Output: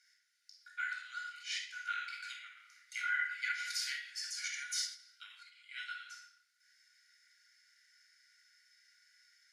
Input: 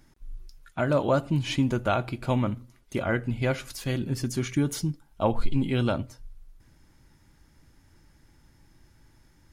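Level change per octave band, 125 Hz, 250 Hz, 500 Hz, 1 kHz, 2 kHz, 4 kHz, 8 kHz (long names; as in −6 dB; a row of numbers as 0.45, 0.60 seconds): below −40 dB, below −40 dB, below −40 dB, −12.5 dB, −1.0 dB, −2.5 dB, −1.5 dB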